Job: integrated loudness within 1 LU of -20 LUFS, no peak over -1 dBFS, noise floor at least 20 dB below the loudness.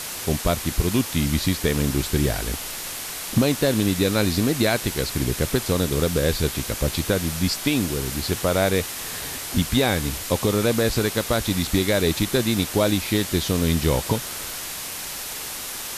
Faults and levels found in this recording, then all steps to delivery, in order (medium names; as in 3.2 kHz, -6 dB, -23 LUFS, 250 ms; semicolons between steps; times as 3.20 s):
noise floor -32 dBFS; noise floor target -43 dBFS; loudness -23.0 LUFS; peak level -5.0 dBFS; loudness target -20.0 LUFS
-> noise print and reduce 11 dB; trim +3 dB